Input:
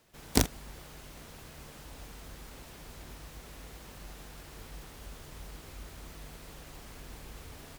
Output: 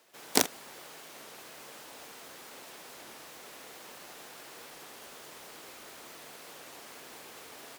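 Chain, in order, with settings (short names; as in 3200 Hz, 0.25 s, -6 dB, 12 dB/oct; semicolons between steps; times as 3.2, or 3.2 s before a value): HPF 380 Hz 12 dB/oct; record warp 33 1/3 rpm, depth 100 cents; gain +3.5 dB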